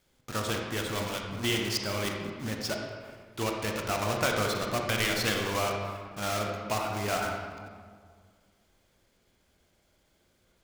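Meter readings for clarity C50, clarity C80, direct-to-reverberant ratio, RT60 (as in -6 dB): 2.0 dB, 4.0 dB, 1.0 dB, 1.9 s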